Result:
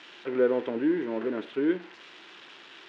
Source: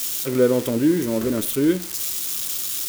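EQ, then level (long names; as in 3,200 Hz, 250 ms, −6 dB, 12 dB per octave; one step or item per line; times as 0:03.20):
loudspeaker in its box 440–2,400 Hz, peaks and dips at 570 Hz −8 dB, 1,200 Hz −7 dB, 2,200 Hz −5 dB
0.0 dB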